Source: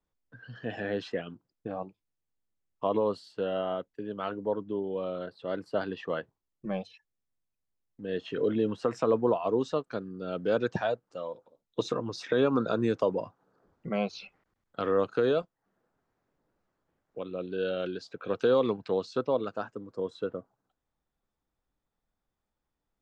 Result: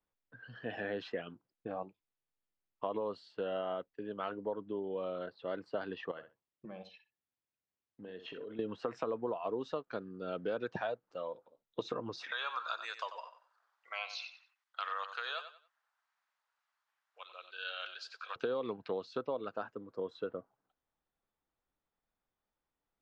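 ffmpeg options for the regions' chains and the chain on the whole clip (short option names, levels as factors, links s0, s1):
-filter_complex "[0:a]asettb=1/sr,asplit=3[s0][s1][s2];[s0]atrim=end=6.114[s3];[s1]atrim=start=6.11:end=8.59,asetpts=PTS-STARTPTS,afade=t=in:d=0.004:c=qsin,afade=t=out:st=2.476:d=0.004:c=qsin,highpass=51,acompressor=threshold=0.0126:ratio=12:attack=3.2:release=140:knee=1:detection=peak,asplit=2[s4][s5];[s5]adelay=64,lowpass=f=4200:p=1,volume=0.299,asplit=2[s6][s7];[s7]adelay=64,lowpass=f=4200:p=1,volume=0.18[s8];[s4][s6][s8]amix=inputs=3:normalize=0,atrim=end_sample=109368[s9];[s2]atrim=start=8.586[s10];[s3][s9]acrossfade=d=0.004:c1=hsin:c2=qsin[s11];[s11][s10]acrossfade=d=0.004:c1=qsin:c2=hsin,asettb=1/sr,asplit=3[s12][s13][s14];[s12]atrim=end=12.314[s15];[s13]atrim=start=12.31:end=18.36,asetpts=PTS-STARTPTS,afade=t=in:d=0.004:c=qsin,afade=t=out:st=6.046:d=0.004:c=qsin,highpass=f=930:w=0.5412,highpass=f=930:w=1.3066,aemphasis=mode=production:type=75kf,aecho=1:1:92|184|276:0.282|0.0789|0.0221,atrim=end_sample=266805[s16];[s14]atrim=start=18.356[s17];[s15][s16]acrossfade=d=0.004:c1=hsin:c2=qsin[s18];[s18][s17]acrossfade=d=0.004:c1=qsin:c2=hsin,lowpass=3800,lowshelf=f=290:g=-8,acompressor=threshold=0.0282:ratio=6,volume=0.841"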